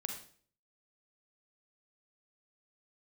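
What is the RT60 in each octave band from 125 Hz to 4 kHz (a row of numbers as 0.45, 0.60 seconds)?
0.65, 0.55, 0.55, 0.45, 0.45, 0.45 seconds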